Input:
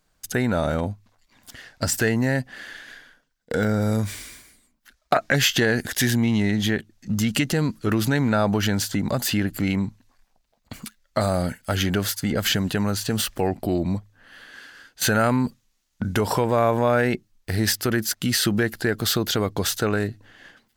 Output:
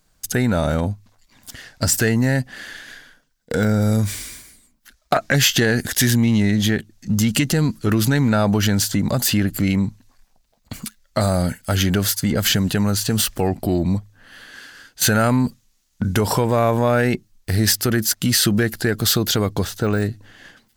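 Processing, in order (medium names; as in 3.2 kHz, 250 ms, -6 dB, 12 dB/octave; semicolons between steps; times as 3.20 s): 19.59–20.02 s: de-esser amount 100%; tone controls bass +4 dB, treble +5 dB; in parallel at -8.5 dB: saturation -19.5 dBFS, distortion -10 dB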